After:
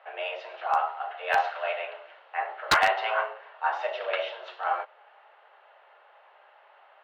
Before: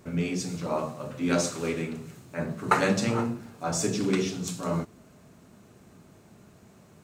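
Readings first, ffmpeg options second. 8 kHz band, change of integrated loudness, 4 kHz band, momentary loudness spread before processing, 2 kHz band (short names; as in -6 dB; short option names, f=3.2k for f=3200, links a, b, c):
-13.0 dB, 0.0 dB, +2.5 dB, 11 LU, +6.0 dB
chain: -af "highpass=f=470:t=q:w=0.5412,highpass=f=470:t=q:w=1.307,lowpass=f=3k:t=q:w=0.5176,lowpass=f=3k:t=q:w=0.7071,lowpass=f=3k:t=q:w=1.932,afreqshift=190,bandreject=f=2.4k:w=14,aeval=exprs='0.126*(abs(mod(val(0)/0.126+3,4)-2)-1)':c=same,volume=5.5dB"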